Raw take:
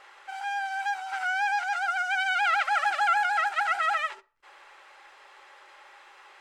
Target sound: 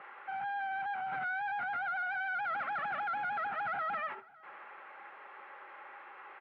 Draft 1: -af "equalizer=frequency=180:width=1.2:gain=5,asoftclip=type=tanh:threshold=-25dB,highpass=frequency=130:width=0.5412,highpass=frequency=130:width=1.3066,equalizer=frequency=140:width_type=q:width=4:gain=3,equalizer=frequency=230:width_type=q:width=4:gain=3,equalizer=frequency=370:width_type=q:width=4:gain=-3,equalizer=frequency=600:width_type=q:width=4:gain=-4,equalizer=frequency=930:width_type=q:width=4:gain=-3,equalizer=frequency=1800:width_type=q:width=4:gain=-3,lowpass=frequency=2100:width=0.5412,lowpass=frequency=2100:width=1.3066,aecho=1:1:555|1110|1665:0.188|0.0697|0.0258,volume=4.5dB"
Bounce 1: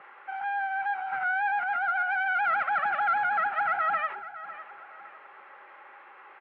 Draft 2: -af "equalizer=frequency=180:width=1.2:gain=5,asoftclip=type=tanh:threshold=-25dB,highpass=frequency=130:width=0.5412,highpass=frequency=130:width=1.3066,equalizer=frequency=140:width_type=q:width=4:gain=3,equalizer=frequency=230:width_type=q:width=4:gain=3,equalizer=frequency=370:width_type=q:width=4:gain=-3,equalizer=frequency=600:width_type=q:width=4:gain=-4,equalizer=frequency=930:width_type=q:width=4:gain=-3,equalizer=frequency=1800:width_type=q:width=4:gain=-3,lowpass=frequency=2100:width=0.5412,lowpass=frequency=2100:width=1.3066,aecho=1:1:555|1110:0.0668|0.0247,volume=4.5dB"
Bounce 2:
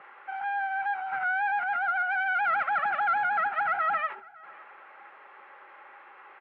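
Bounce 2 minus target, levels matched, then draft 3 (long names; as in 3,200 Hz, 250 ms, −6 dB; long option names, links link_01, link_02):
soft clipping: distortion −8 dB
-af "equalizer=frequency=180:width=1.2:gain=5,asoftclip=type=tanh:threshold=-36.5dB,highpass=frequency=130:width=0.5412,highpass=frequency=130:width=1.3066,equalizer=frequency=140:width_type=q:width=4:gain=3,equalizer=frequency=230:width_type=q:width=4:gain=3,equalizer=frequency=370:width_type=q:width=4:gain=-3,equalizer=frequency=600:width_type=q:width=4:gain=-4,equalizer=frequency=930:width_type=q:width=4:gain=-3,equalizer=frequency=1800:width_type=q:width=4:gain=-3,lowpass=frequency=2100:width=0.5412,lowpass=frequency=2100:width=1.3066,aecho=1:1:555|1110:0.0668|0.0247,volume=4.5dB"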